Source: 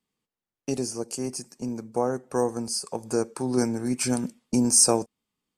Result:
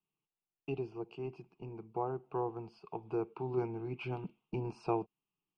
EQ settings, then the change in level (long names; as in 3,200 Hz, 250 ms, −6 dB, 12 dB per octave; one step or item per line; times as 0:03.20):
low-pass with resonance 2,700 Hz, resonance Q 5.7
high-frequency loss of the air 430 metres
phaser with its sweep stopped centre 360 Hz, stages 8
−5.5 dB